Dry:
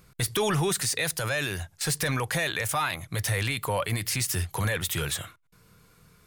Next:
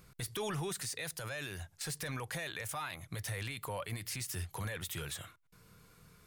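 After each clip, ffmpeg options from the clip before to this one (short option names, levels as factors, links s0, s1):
-af "alimiter=level_in=1.41:limit=0.0631:level=0:latency=1:release=386,volume=0.708,volume=0.708"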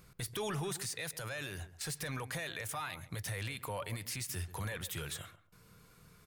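-filter_complex "[0:a]asplit=2[s0][s1];[s1]adelay=137,lowpass=f=1400:p=1,volume=0.211,asplit=2[s2][s3];[s3]adelay=137,lowpass=f=1400:p=1,volume=0.19[s4];[s0][s2][s4]amix=inputs=3:normalize=0"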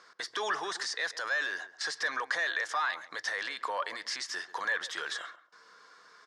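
-af "highpass=f=380:w=0.5412,highpass=f=380:w=1.3066,equalizer=f=390:t=q:w=4:g=-5,equalizer=f=550:t=q:w=4:g=-3,equalizer=f=1100:t=q:w=4:g=6,equalizer=f=1700:t=q:w=4:g=10,equalizer=f=2500:t=q:w=4:g=-9,equalizer=f=5200:t=q:w=4:g=5,lowpass=f=6100:w=0.5412,lowpass=f=6100:w=1.3066,volume=2.11"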